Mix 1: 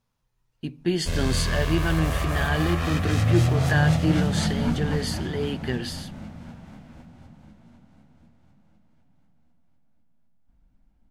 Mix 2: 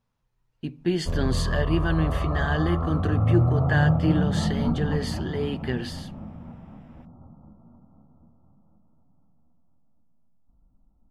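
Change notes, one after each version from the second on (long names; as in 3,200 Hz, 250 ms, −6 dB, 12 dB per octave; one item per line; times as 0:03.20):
first sound: add linear-phase brick-wall low-pass 1,400 Hz
master: add high-shelf EQ 4,200 Hz −8 dB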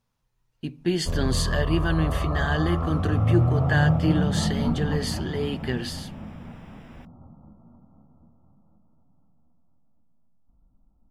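second sound +9.0 dB
master: add high-shelf EQ 4,200 Hz +8 dB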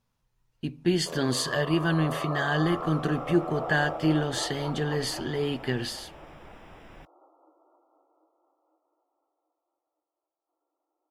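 first sound: add linear-phase brick-wall high-pass 300 Hz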